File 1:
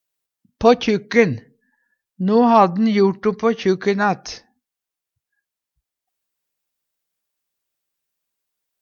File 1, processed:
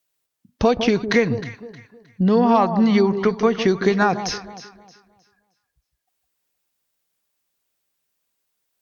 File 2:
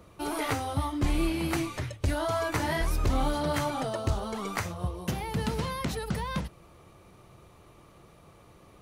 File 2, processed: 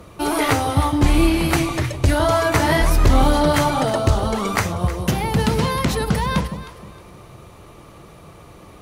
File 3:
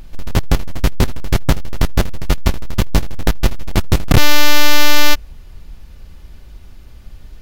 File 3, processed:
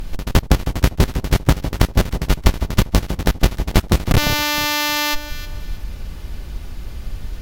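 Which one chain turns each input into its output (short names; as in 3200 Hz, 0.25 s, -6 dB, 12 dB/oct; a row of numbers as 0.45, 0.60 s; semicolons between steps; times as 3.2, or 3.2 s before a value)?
compressor 6:1, threshold -18 dBFS; added harmonics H 8 -40 dB, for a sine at -6.5 dBFS; on a send: echo with dull and thin repeats by turns 0.156 s, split 1000 Hz, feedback 54%, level -9 dB; on the sum: maximiser +9 dB; match loudness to -19 LUFS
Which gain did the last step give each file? -4.5, +2.5, -0.5 dB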